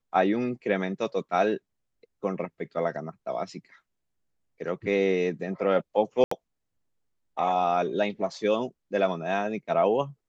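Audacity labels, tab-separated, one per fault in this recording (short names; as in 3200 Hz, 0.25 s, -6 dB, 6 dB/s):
6.240000	6.310000	gap 74 ms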